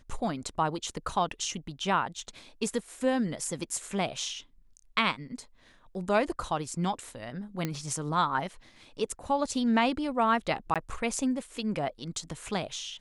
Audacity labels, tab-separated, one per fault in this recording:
7.650000	7.650000	pop -16 dBFS
10.740000	10.760000	gap 17 ms

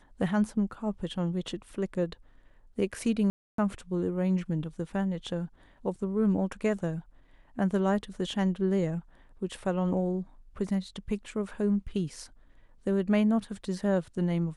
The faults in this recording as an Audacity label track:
3.300000	3.580000	gap 0.283 s

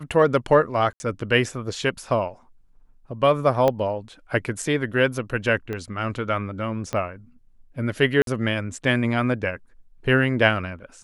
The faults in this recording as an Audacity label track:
0.930000	1.000000	gap 70 ms
3.680000	3.680000	pop -9 dBFS
5.730000	5.730000	pop -18 dBFS
6.930000	6.930000	pop -13 dBFS
8.220000	8.270000	gap 52 ms

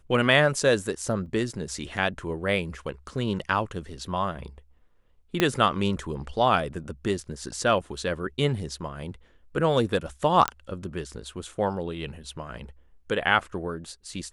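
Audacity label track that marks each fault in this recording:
1.260000	1.260000	gap 2.3 ms
5.400000	5.400000	pop -7 dBFS
10.480000	10.480000	pop -8 dBFS

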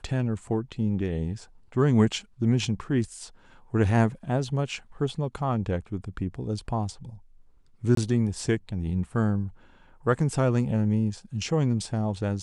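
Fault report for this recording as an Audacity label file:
7.950000	7.970000	gap 23 ms

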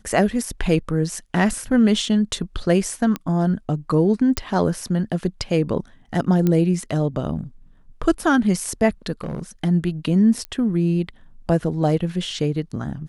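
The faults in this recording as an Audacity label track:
3.160000	3.160000	pop -12 dBFS
4.370000	4.370000	pop -7 dBFS
6.470000	6.470000	pop -9 dBFS
9.210000	9.430000	clipped -23.5 dBFS
10.450000	10.450000	pop -17 dBFS

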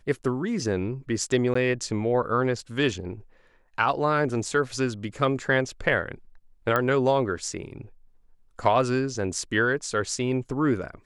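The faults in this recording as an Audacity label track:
1.540000	1.550000	gap 14 ms
6.760000	6.760000	pop -11 dBFS

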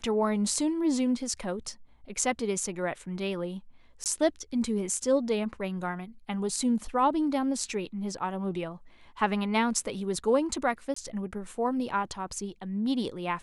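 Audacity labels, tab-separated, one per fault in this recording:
4.040000	4.060000	gap 18 ms
10.940000	10.960000	gap 24 ms

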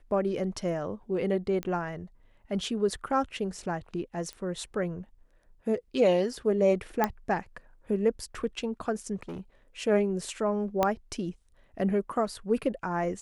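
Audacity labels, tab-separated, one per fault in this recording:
1.630000	1.630000	pop -20 dBFS
4.330000	4.330000	pop -26 dBFS
7.040000	7.040000	pop -11 dBFS
9.150000	9.400000	clipped -34 dBFS
10.830000	10.830000	pop -11 dBFS

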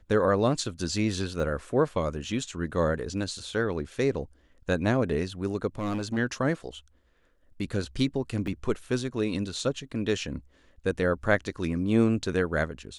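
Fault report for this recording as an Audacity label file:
1.400000	1.400000	gap 2 ms
5.780000	6.180000	clipped -25.5 dBFS
8.470000	8.470000	gap 4.4 ms

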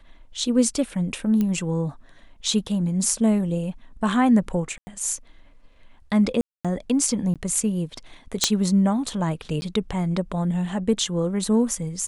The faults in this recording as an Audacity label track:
1.410000	1.410000	pop -13 dBFS
4.780000	4.870000	gap 90 ms
6.410000	6.650000	gap 0.236 s
7.340000	7.360000	gap 17 ms
8.440000	8.440000	pop -1 dBFS
9.610000	9.620000	gap 10 ms

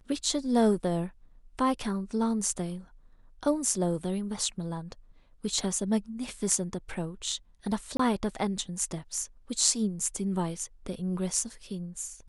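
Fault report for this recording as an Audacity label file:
7.970000	7.990000	gap 24 ms

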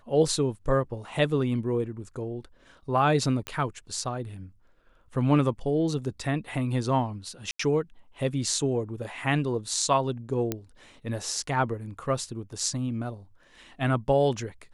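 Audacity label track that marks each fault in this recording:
3.470000	3.470000	pop -17 dBFS
7.510000	7.590000	gap 84 ms
10.520000	10.520000	pop -13 dBFS

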